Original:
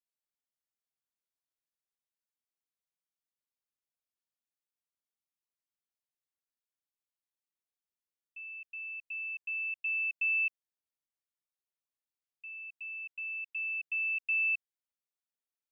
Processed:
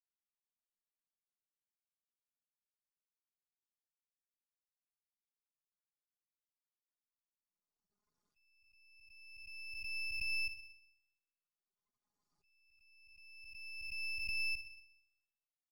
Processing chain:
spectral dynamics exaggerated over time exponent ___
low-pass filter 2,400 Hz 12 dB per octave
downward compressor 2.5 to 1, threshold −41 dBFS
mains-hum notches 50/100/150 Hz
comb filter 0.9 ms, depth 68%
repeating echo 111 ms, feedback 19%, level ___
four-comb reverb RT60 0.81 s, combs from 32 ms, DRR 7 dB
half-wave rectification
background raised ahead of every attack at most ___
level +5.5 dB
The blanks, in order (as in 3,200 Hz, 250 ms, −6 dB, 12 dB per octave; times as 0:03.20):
3, −11.5 dB, 25 dB per second